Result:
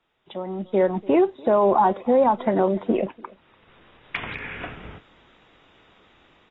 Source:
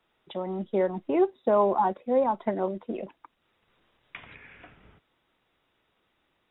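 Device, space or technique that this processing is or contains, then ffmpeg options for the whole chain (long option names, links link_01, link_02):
low-bitrate web radio: -filter_complex "[0:a]asettb=1/sr,asplit=3[link_01][link_02][link_03];[link_01]atrim=end=2.884[link_04];[link_02]atrim=start=2.88:end=4.27,asetpts=PTS-STARTPTS,afade=type=in:duration=0.004:curve=qsin,afade=type=out:start_time=1.386:duration=0.004:curve=qsin,lowpass=3500[link_05];[link_03]atrim=start=4.266[link_06];[link_04][link_05]acrossfade=duration=0.004:curve1=hsin:curve2=qsin[link_07];[link_07][link_06]acrossfade=duration=0.004:curve1=qsin:curve2=hsin,asplit=2[link_08][link_09];[link_09]adelay=291.5,volume=-25dB,highshelf=frequency=4000:gain=-6.56[link_10];[link_08][link_10]amix=inputs=2:normalize=0,dynaudnorm=framelen=580:gausssize=3:maxgain=15.5dB,alimiter=limit=-10dB:level=0:latency=1:release=76" -ar 24000 -c:a aac -b:a 24k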